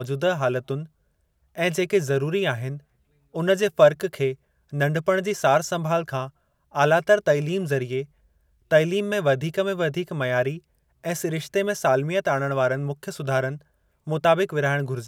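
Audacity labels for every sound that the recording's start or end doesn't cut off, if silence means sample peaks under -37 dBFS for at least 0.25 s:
1.550000	2.780000	sound
3.350000	4.340000	sound
4.730000	6.280000	sound
6.750000	8.040000	sound
8.710000	10.580000	sound
11.040000	13.570000	sound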